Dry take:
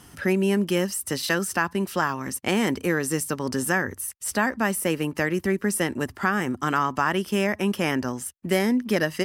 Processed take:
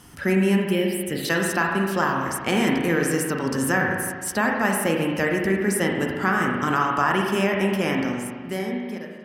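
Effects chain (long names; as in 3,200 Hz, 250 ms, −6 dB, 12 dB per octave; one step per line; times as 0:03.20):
fade-out on the ending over 1.76 s
0:00.65–0:01.25: phaser swept by the level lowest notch 530 Hz, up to 1,200 Hz, full sweep at −22 dBFS
spring reverb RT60 1.6 s, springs 37/41 ms, chirp 70 ms, DRR 0 dB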